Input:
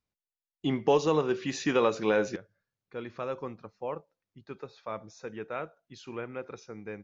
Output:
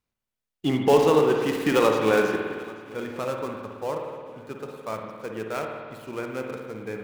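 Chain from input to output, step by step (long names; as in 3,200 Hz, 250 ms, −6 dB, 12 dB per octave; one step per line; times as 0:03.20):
gap after every zero crossing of 0.092 ms
feedback echo with a long and a short gap by turns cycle 1,395 ms, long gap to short 1.5 to 1, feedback 32%, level −22 dB
spring reverb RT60 1.8 s, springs 54 ms, chirp 65 ms, DRR 2 dB
level +4.5 dB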